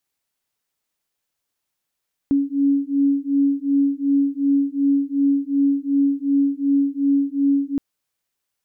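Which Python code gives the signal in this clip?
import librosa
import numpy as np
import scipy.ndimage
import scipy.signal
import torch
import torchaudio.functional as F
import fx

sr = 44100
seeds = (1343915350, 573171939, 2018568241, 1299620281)

y = fx.two_tone_beats(sr, length_s=5.47, hz=278.0, beat_hz=2.7, level_db=-19.0)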